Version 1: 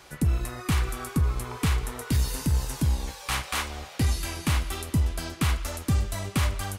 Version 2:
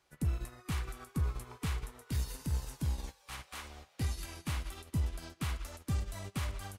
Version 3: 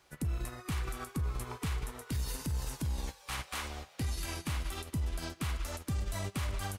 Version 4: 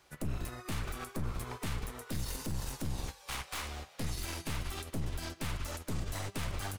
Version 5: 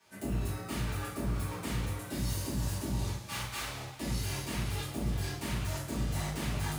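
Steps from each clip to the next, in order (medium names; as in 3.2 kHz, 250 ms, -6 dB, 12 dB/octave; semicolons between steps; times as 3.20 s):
peak limiter -24.5 dBFS, peak gain reduction 7.5 dB; upward expansion 2.5:1, over -42 dBFS
peak limiter -36 dBFS, peak gain reduction 11.5 dB; trim +8 dB
one-sided wavefolder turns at -38 dBFS; trim +1 dB
two-slope reverb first 0.53 s, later 2.4 s, from -16 dB, DRR -9.5 dB; frequency shift +54 Hz; trim -7.5 dB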